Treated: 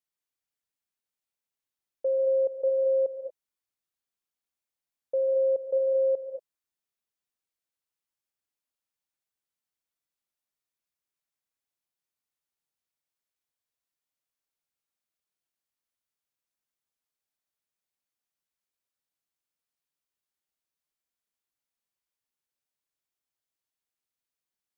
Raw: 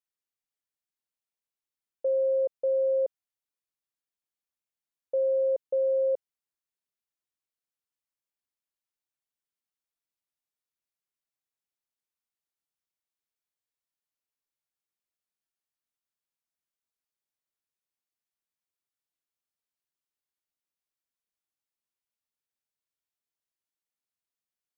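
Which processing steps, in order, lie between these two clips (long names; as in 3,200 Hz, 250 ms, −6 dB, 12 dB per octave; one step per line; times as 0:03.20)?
reverb whose tail is shaped and stops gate 250 ms rising, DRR 5.5 dB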